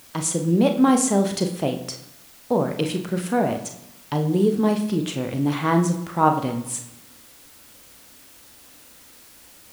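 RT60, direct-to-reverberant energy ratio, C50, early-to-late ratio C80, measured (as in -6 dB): 0.90 s, 5.0 dB, 10.0 dB, 13.0 dB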